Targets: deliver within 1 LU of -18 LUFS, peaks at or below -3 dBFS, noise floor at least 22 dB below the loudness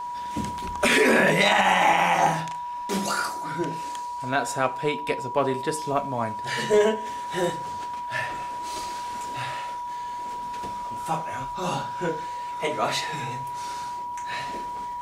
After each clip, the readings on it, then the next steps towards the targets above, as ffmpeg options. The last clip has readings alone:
steady tone 970 Hz; tone level -30 dBFS; loudness -26.0 LUFS; peak -6.0 dBFS; loudness target -18.0 LUFS
-> -af "bandreject=f=970:w=30"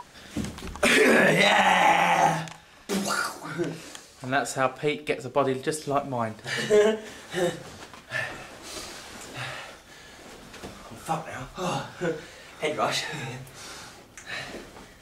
steady tone none; loudness -25.5 LUFS; peak -6.5 dBFS; loudness target -18.0 LUFS
-> -af "volume=7.5dB,alimiter=limit=-3dB:level=0:latency=1"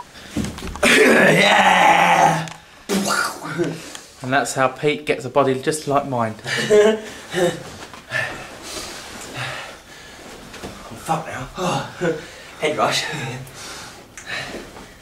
loudness -18.5 LUFS; peak -3.0 dBFS; noise floor -44 dBFS

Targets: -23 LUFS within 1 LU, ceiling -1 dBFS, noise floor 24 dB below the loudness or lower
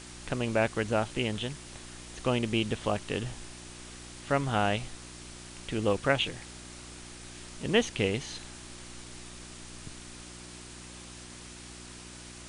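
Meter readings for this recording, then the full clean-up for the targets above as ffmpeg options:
hum 60 Hz; harmonics up to 360 Hz; hum level -47 dBFS; noise floor -47 dBFS; noise floor target -55 dBFS; loudness -30.5 LUFS; peak -11.0 dBFS; loudness target -23.0 LUFS
-> -af "bandreject=f=60:t=h:w=4,bandreject=f=120:t=h:w=4,bandreject=f=180:t=h:w=4,bandreject=f=240:t=h:w=4,bandreject=f=300:t=h:w=4,bandreject=f=360:t=h:w=4"
-af "afftdn=nr=8:nf=-47"
-af "volume=7.5dB"

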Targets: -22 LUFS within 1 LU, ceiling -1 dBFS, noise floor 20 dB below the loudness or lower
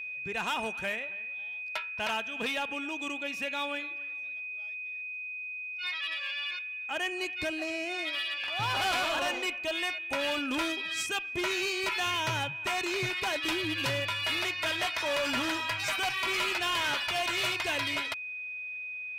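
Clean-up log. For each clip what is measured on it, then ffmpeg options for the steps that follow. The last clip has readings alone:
steady tone 2500 Hz; tone level -36 dBFS; loudness -31.0 LUFS; peak -22.0 dBFS; loudness target -22.0 LUFS
-> -af "bandreject=f=2.5k:w=30"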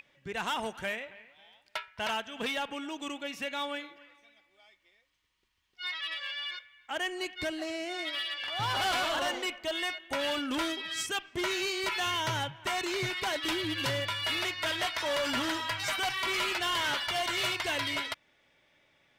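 steady tone none; loudness -32.0 LUFS; peak -23.5 dBFS; loudness target -22.0 LUFS
-> -af "volume=10dB"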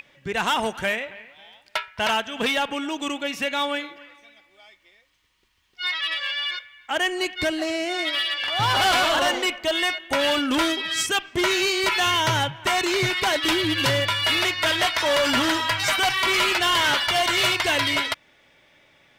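loudness -22.0 LUFS; peak -13.5 dBFS; noise floor -61 dBFS

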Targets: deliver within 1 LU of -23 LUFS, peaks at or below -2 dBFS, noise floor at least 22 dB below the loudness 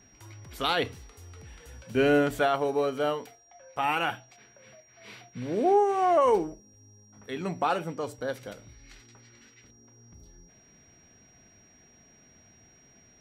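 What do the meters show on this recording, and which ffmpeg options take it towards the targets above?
steady tone 5700 Hz; tone level -58 dBFS; loudness -27.0 LUFS; peak -12.5 dBFS; loudness target -23.0 LUFS
-> -af "bandreject=f=5.7k:w=30"
-af "volume=4dB"

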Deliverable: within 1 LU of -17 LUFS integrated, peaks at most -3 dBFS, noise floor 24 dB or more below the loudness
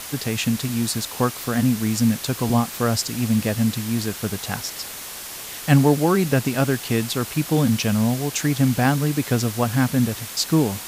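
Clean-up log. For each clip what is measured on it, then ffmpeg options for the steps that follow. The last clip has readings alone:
noise floor -35 dBFS; noise floor target -46 dBFS; loudness -21.5 LUFS; peak -3.0 dBFS; loudness target -17.0 LUFS
-> -af "afftdn=nr=11:nf=-35"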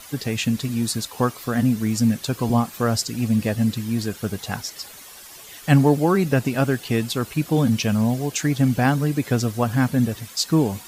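noise floor -42 dBFS; noise floor target -46 dBFS
-> -af "afftdn=nr=6:nf=-42"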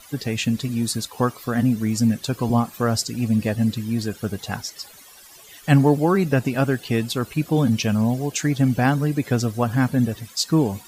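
noise floor -46 dBFS; loudness -22.0 LUFS; peak -3.0 dBFS; loudness target -17.0 LUFS
-> -af "volume=5dB,alimiter=limit=-3dB:level=0:latency=1"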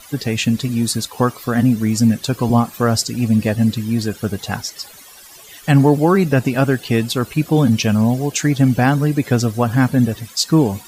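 loudness -17.0 LUFS; peak -3.0 dBFS; noise floor -41 dBFS

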